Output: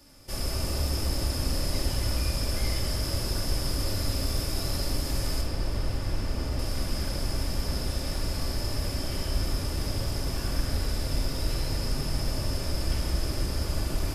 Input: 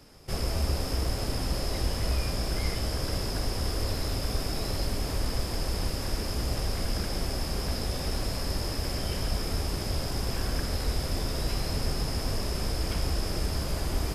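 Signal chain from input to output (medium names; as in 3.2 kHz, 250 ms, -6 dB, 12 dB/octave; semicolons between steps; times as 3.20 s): treble shelf 4.7 kHz +8.5 dB, from 5.41 s -5 dB, from 6.59 s +4 dB; reverberation RT60 1.8 s, pre-delay 3 ms, DRR -1.5 dB; trim -5.5 dB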